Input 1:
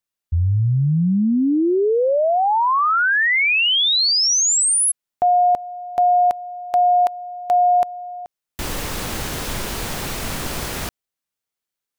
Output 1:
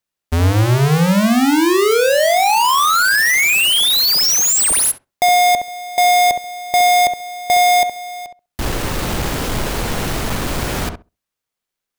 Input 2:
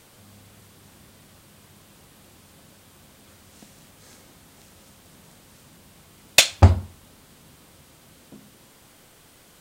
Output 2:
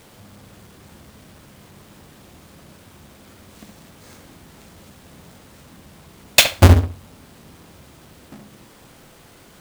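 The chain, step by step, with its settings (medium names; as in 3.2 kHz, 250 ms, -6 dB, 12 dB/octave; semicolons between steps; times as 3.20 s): square wave that keeps the level; filtered feedback delay 66 ms, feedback 15%, low-pass 1.3 kHz, level -5.5 dB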